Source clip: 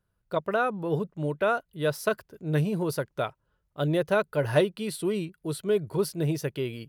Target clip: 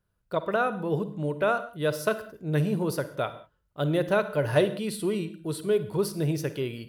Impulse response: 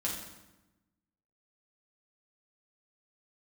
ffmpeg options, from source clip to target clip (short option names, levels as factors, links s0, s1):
-filter_complex "[0:a]asplit=2[s0][s1];[1:a]atrim=start_sample=2205,afade=t=out:st=0.2:d=0.01,atrim=end_sample=9261,adelay=50[s2];[s1][s2]afir=irnorm=-1:irlink=0,volume=0.168[s3];[s0][s3]amix=inputs=2:normalize=0"